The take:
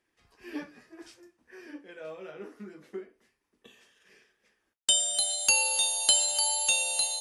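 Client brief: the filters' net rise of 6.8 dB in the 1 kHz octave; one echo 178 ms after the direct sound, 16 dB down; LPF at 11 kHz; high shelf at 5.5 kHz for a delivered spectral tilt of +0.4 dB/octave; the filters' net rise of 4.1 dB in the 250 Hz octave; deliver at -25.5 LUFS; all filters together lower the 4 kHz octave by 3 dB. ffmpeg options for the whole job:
-af "lowpass=11000,equalizer=f=250:t=o:g=5,equalizer=f=1000:t=o:g=8,equalizer=f=4000:t=o:g=-3,highshelf=f=5500:g=-3.5,aecho=1:1:178:0.158,volume=1.5"

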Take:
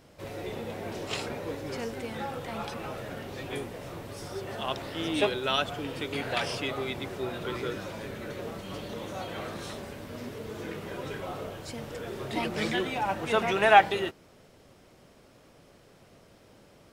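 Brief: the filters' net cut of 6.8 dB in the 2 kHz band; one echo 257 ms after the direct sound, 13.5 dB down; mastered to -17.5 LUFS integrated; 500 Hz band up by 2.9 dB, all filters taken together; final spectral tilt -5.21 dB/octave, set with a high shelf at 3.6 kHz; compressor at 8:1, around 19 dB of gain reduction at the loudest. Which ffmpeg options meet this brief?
-af "equalizer=f=500:t=o:g=4.5,equalizer=f=2000:t=o:g=-7,highshelf=f=3600:g=-8.5,acompressor=threshold=0.0224:ratio=8,aecho=1:1:257:0.211,volume=10.6"

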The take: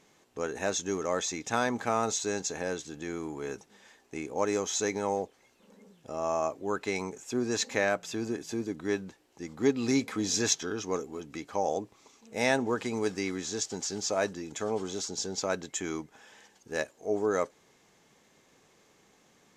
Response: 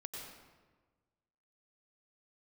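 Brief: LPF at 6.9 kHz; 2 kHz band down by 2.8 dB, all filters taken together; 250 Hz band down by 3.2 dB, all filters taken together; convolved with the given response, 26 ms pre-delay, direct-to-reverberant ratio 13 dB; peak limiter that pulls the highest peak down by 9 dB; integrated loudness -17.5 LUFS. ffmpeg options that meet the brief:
-filter_complex "[0:a]lowpass=6900,equalizer=f=250:t=o:g=-4,equalizer=f=2000:t=o:g=-3.5,alimiter=limit=0.075:level=0:latency=1,asplit=2[s0][s1];[1:a]atrim=start_sample=2205,adelay=26[s2];[s1][s2]afir=irnorm=-1:irlink=0,volume=0.282[s3];[s0][s3]amix=inputs=2:normalize=0,volume=7.94"

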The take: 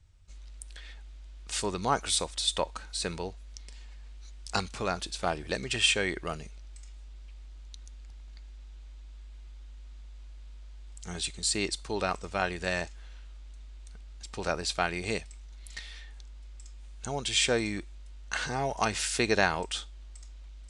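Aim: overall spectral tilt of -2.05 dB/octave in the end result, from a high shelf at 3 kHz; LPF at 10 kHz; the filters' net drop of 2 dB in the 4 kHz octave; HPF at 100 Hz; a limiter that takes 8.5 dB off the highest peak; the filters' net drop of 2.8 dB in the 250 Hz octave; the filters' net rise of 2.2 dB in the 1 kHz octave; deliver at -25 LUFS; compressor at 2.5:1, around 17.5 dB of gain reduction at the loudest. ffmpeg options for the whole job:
-af "highpass=100,lowpass=10000,equalizer=f=250:t=o:g=-4,equalizer=f=1000:t=o:g=3,highshelf=f=3000:g=4.5,equalizer=f=4000:t=o:g=-6,acompressor=threshold=0.00501:ratio=2.5,volume=11.2,alimiter=limit=0.316:level=0:latency=1"

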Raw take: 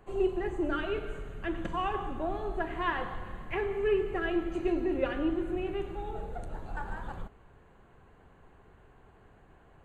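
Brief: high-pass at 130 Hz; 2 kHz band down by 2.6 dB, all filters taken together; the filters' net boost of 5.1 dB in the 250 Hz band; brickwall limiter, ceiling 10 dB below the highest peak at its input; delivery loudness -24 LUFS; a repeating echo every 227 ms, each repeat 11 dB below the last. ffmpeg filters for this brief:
-af "highpass=130,equalizer=f=250:t=o:g=8.5,equalizer=f=2000:t=o:g=-3.5,alimiter=level_in=1.06:limit=0.0631:level=0:latency=1,volume=0.944,aecho=1:1:227|454|681:0.282|0.0789|0.0221,volume=2.82"

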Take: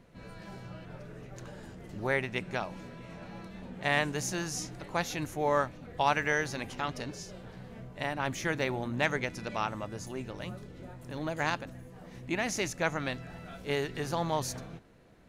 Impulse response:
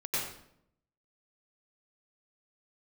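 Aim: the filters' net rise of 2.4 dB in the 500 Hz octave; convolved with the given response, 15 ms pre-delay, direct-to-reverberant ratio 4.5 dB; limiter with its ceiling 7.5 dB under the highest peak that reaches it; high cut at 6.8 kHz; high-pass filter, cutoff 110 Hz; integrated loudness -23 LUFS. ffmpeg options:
-filter_complex "[0:a]highpass=110,lowpass=6800,equalizer=f=500:t=o:g=3,alimiter=limit=0.1:level=0:latency=1,asplit=2[s0][s1];[1:a]atrim=start_sample=2205,adelay=15[s2];[s1][s2]afir=irnorm=-1:irlink=0,volume=0.282[s3];[s0][s3]amix=inputs=2:normalize=0,volume=3.55"

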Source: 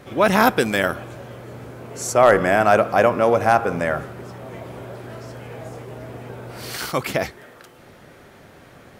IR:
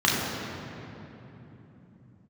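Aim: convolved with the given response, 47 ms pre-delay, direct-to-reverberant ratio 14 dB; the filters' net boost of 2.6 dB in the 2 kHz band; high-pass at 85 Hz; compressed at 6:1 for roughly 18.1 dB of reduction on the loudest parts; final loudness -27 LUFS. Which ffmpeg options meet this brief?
-filter_complex "[0:a]highpass=85,equalizer=f=2000:t=o:g=3.5,acompressor=threshold=0.0398:ratio=6,asplit=2[s0][s1];[1:a]atrim=start_sample=2205,adelay=47[s2];[s1][s2]afir=irnorm=-1:irlink=0,volume=0.0251[s3];[s0][s3]amix=inputs=2:normalize=0,volume=2"

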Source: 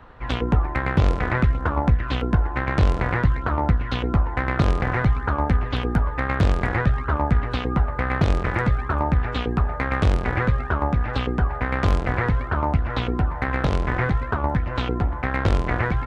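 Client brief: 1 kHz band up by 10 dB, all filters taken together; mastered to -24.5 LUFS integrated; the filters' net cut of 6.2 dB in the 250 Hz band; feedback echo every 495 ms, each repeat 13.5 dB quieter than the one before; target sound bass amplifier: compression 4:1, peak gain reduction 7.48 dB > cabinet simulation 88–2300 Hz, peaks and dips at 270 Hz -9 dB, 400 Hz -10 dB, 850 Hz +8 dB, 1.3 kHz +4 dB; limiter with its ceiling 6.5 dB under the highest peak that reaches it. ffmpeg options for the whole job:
-af "equalizer=f=250:t=o:g=-5,equalizer=f=1000:t=o:g=6.5,alimiter=limit=0.266:level=0:latency=1,aecho=1:1:495|990:0.211|0.0444,acompressor=threshold=0.0708:ratio=4,highpass=f=88:w=0.5412,highpass=f=88:w=1.3066,equalizer=f=270:t=q:w=4:g=-9,equalizer=f=400:t=q:w=4:g=-10,equalizer=f=850:t=q:w=4:g=8,equalizer=f=1300:t=q:w=4:g=4,lowpass=f=2300:w=0.5412,lowpass=f=2300:w=1.3066,volume=1.33"

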